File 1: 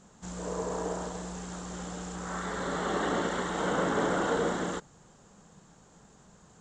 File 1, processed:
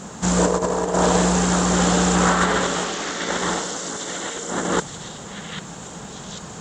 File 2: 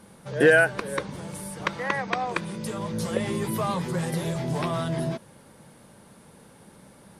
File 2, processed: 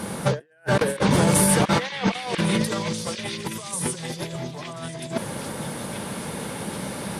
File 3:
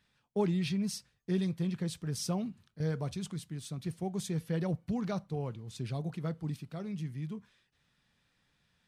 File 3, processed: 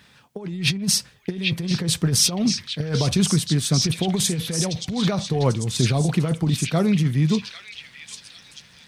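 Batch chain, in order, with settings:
HPF 85 Hz 6 dB/oct; negative-ratio compressor -37 dBFS, ratio -0.5; on a send: delay with a stepping band-pass 0.793 s, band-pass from 2800 Hz, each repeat 0.7 oct, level -0.5 dB; on the sum: normalise peaks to -6 dBFS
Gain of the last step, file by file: +16.5, +11.5, +17.5 dB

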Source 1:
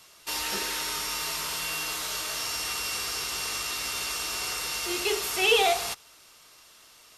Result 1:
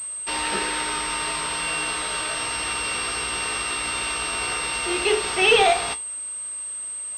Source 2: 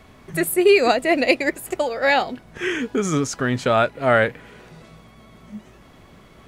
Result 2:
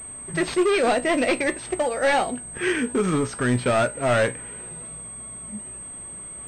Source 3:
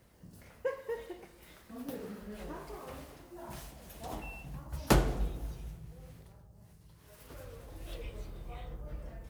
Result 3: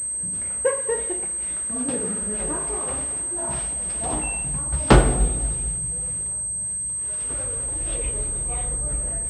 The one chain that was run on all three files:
hard clip -17.5 dBFS; resonator 61 Hz, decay 0.23 s, harmonics all, mix 60%; pulse-width modulation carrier 8300 Hz; match loudness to -23 LUFS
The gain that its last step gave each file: +10.5, +4.5, +16.5 dB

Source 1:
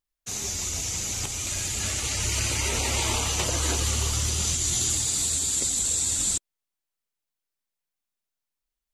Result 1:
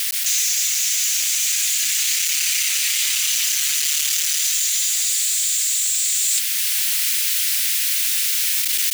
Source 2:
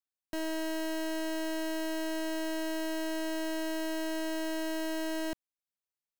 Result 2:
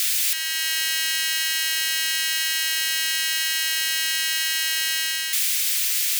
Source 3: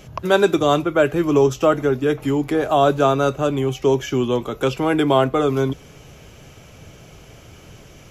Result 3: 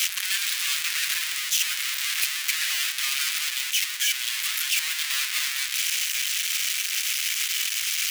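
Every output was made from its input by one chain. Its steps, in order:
infinite clipping; inverse Chebyshev high-pass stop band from 440 Hz, stop band 70 dB; vocal rider within 4 dB 0.5 s; normalise peaks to -9 dBFS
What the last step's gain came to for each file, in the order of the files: +10.5, +20.5, +0.5 dB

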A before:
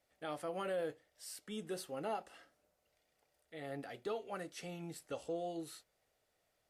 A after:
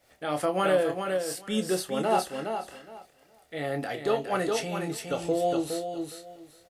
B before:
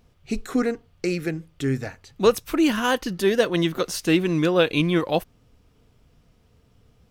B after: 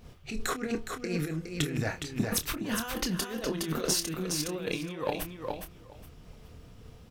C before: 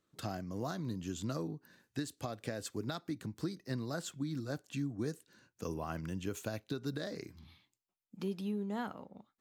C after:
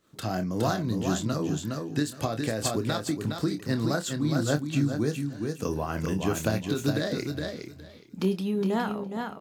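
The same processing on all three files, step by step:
rattling part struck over -26 dBFS, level -26 dBFS; negative-ratio compressor -32 dBFS, ratio -1; doubler 27 ms -9 dB; on a send: feedback echo 0.414 s, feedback 18%, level -5.5 dB; on the sum: noise-modulated level, depth 60%; normalise peaks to -12 dBFS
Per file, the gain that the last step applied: +17.5, +1.5, +14.5 dB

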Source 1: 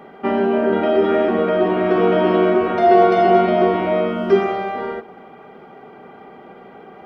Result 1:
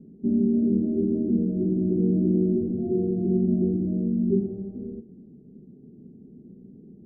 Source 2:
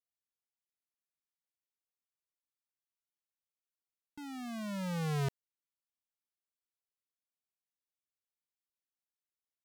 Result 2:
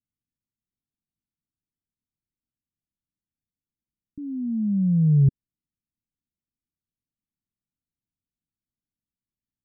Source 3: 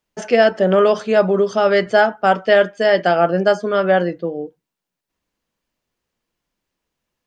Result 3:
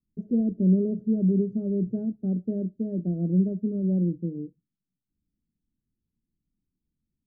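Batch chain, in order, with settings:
inverse Chebyshev low-pass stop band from 900 Hz, stop band 60 dB; normalise peaks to -12 dBFS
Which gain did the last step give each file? +2.5, +17.0, +2.0 dB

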